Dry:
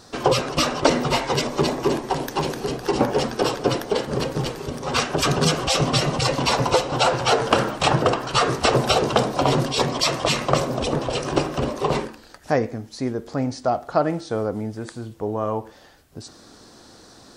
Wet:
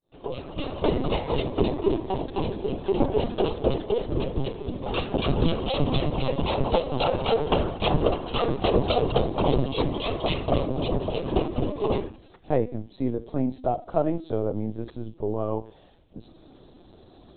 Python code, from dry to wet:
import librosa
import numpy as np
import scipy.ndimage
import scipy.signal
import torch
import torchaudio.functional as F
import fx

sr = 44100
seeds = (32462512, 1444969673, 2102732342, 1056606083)

y = fx.fade_in_head(x, sr, length_s=1.1)
y = fx.peak_eq(y, sr, hz=1600.0, db=-15.0, octaves=1.4)
y = fx.lpc_vocoder(y, sr, seeds[0], excitation='pitch_kept', order=16)
y = fx.end_taper(y, sr, db_per_s=300.0)